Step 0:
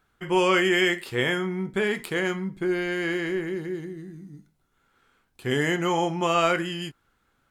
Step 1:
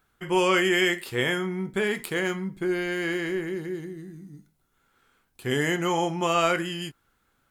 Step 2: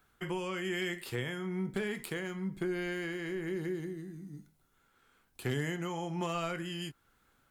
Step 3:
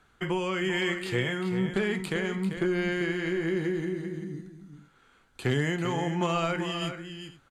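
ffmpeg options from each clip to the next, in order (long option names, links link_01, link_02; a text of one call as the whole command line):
ffmpeg -i in.wav -af "highshelf=frequency=8900:gain=8.5,volume=-1dB" out.wav
ffmpeg -i in.wav -filter_complex "[0:a]acrossover=split=160[link_01][link_02];[link_02]acompressor=threshold=-33dB:ratio=6[link_03];[link_01][link_03]amix=inputs=2:normalize=0,tremolo=f=1.1:d=0.32,volume=25dB,asoftclip=hard,volume=-25dB" out.wav
ffmpeg -i in.wav -filter_complex "[0:a]lowpass=7200,bandreject=frequency=5300:width=11,asplit=2[link_01][link_02];[link_02]aecho=0:1:393|477:0.355|0.106[link_03];[link_01][link_03]amix=inputs=2:normalize=0,volume=7dB" out.wav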